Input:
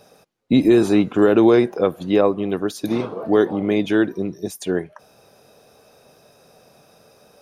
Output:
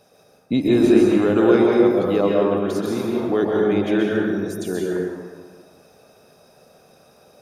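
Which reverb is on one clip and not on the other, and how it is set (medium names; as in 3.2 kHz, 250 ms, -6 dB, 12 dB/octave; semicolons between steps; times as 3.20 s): plate-style reverb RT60 1.6 s, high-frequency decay 0.6×, pre-delay 115 ms, DRR -3 dB; trim -5 dB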